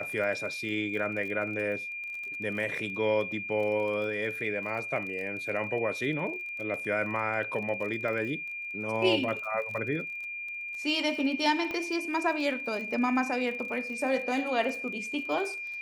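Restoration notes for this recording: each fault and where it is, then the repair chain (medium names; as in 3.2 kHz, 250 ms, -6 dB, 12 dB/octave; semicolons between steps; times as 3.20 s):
crackle 30 per s -37 dBFS
whine 2.4 kHz -35 dBFS
11.71 s: pop -22 dBFS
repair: de-click; band-stop 2.4 kHz, Q 30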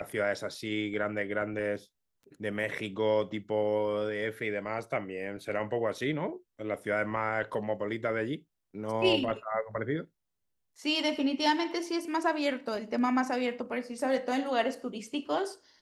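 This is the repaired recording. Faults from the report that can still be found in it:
11.71 s: pop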